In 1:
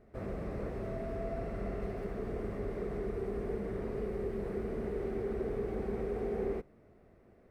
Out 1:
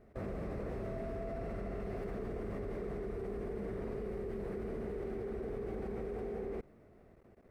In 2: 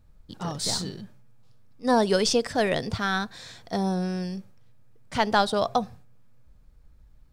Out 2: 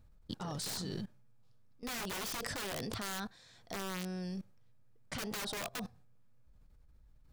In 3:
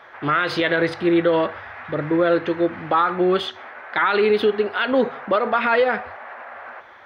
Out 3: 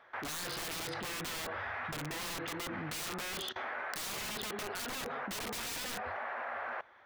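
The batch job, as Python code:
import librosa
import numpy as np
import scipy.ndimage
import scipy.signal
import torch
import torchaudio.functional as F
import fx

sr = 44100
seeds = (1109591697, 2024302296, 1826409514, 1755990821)

y = (np.mod(10.0 ** (19.5 / 20.0) * x + 1.0, 2.0) - 1.0) / 10.0 ** (19.5 / 20.0)
y = fx.level_steps(y, sr, step_db=21)
y = y * librosa.db_to_amplitude(2.5)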